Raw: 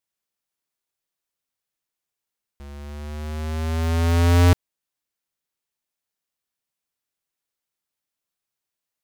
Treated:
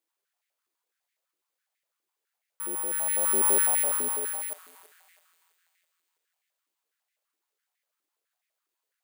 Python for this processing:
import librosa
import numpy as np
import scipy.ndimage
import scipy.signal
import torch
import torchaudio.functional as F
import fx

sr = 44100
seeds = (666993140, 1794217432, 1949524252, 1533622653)

p1 = fx.over_compress(x, sr, threshold_db=-26.0, ratio=-1.0)
p2 = p1 + fx.echo_thinned(p1, sr, ms=329, feedback_pct=54, hz=1100.0, wet_db=-10.0, dry=0)
p3 = (np.kron(scipy.signal.resample_poly(p2, 1, 4), np.eye(4)[0]) * 4)[:len(p2)]
p4 = fx.filter_held_highpass(p3, sr, hz=12.0, low_hz=340.0, high_hz=2000.0)
y = F.gain(torch.from_numpy(p4), -6.0).numpy()